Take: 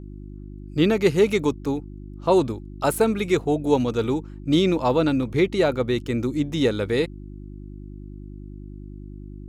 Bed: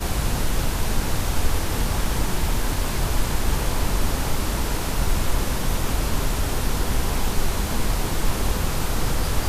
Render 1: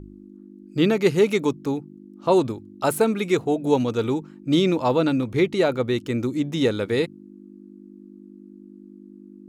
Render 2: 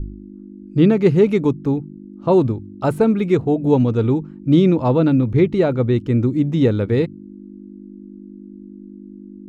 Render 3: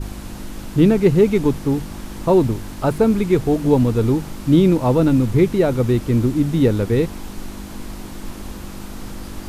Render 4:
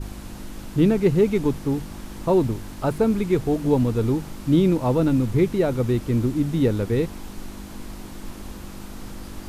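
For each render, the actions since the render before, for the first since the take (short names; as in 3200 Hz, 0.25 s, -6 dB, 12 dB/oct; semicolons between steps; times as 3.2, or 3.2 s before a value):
de-hum 50 Hz, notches 3
RIAA curve playback
add bed -10.5 dB
gain -4.5 dB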